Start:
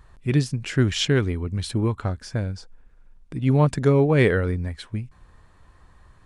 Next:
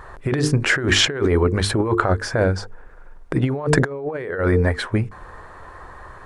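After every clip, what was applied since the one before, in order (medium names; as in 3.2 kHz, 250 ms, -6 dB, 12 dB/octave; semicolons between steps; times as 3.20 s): high-order bell 810 Hz +11.5 dB 2.8 oct; hum notches 50/100/150/200/250/300/350/400/450 Hz; compressor with a negative ratio -23 dBFS, ratio -1; trim +2.5 dB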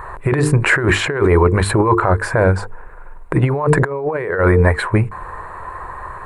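graphic EQ with 31 bands 250 Hz -9 dB, 1 kHz +8 dB, 4 kHz +11 dB; peak limiter -9.5 dBFS, peak gain reduction 9.5 dB; high-order bell 4.5 kHz -15 dB 1.2 oct; trim +6.5 dB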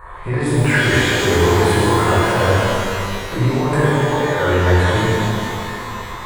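pitch-shifted reverb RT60 2.7 s, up +12 st, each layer -8 dB, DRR -10.5 dB; trim -11.5 dB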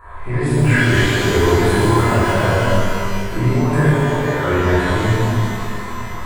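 simulated room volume 350 m³, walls furnished, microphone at 3 m; trim -6 dB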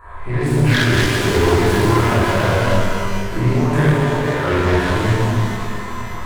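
self-modulated delay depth 0.27 ms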